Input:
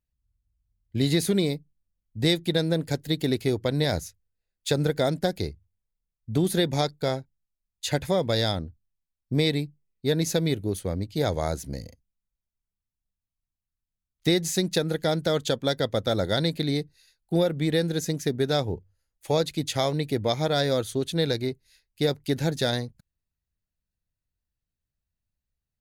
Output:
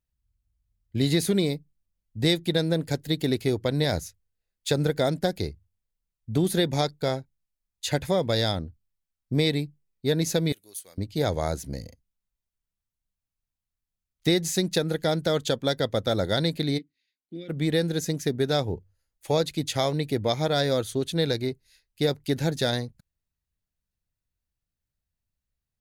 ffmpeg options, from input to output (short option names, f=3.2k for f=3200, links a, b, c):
-filter_complex "[0:a]asettb=1/sr,asplit=3[a][b][c];[a]atrim=end=10.524[d];[b]atrim=start=10.52:end=10.98,asetpts=PTS-STARTPTS,afade=t=in:d=0.004:c=qsin,afade=t=out:st=0.456:d=0.004:c=qsin,aderivative[e];[c]atrim=start=10.976[f];[d][e]acrossfade=d=0.004:c1=hsin:c2=qsin[g];[g][f]acrossfade=d=0.004:c1=qsin:c2=hsin,asplit=3[h][i][j];[h]afade=t=out:st=16.77:d=0.02[k];[i]asplit=3[l][m][n];[l]bandpass=f=270:t=q:w=8,volume=0dB[o];[m]bandpass=f=2.29k:t=q:w=8,volume=-6dB[p];[n]bandpass=f=3.01k:t=q:w=8,volume=-9dB[q];[o][p][q]amix=inputs=3:normalize=0,afade=t=in:st=16.77:d=0.02,afade=t=out:st=17.48:d=0.02[r];[j]afade=t=in:st=17.48:d=0.02[s];[k][r][s]amix=inputs=3:normalize=0"